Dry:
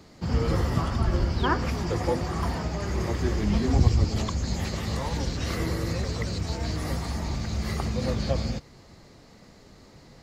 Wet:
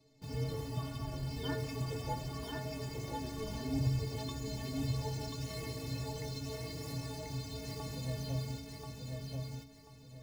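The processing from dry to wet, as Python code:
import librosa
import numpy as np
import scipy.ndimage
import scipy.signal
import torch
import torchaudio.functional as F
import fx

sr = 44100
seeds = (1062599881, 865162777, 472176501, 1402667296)

p1 = fx.peak_eq(x, sr, hz=1400.0, db=-11.5, octaves=0.85)
p2 = fx.quant_dither(p1, sr, seeds[0], bits=6, dither='none')
p3 = p1 + (p2 * librosa.db_to_amplitude(-3.5))
p4 = fx.stiff_resonator(p3, sr, f0_hz=130.0, decay_s=0.45, stiffness=0.03)
p5 = p4 + fx.echo_feedback(p4, sr, ms=1036, feedback_pct=28, wet_db=-3.5, dry=0)
y = p5 * librosa.db_to_amplitude(-2.0)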